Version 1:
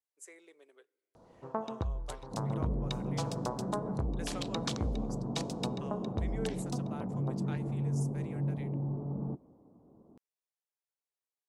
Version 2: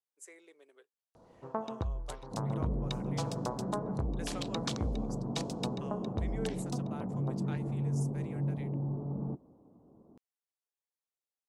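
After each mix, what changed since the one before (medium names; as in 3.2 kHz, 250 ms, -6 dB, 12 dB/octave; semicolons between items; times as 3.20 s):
reverb: off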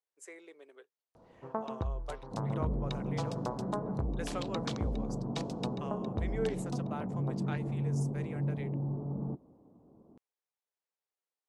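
speech +6.0 dB; master: add treble shelf 5.7 kHz -11 dB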